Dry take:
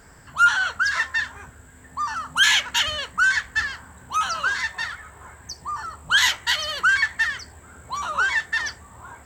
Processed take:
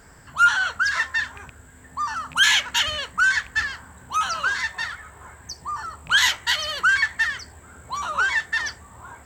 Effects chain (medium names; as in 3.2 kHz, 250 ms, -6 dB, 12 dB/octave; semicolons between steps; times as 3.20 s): rattle on loud lows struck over -39 dBFS, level -26 dBFS